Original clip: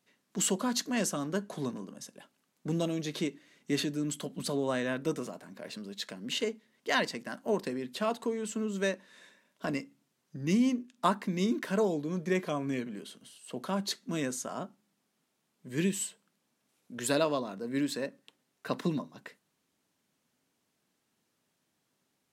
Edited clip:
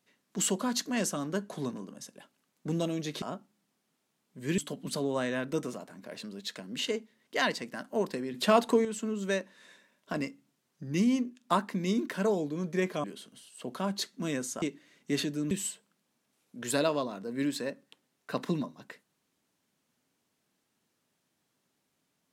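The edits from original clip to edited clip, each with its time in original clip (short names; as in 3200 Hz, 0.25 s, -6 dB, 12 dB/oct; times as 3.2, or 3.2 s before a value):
3.22–4.11 swap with 14.51–15.87
7.87–8.38 gain +8 dB
12.57–12.93 cut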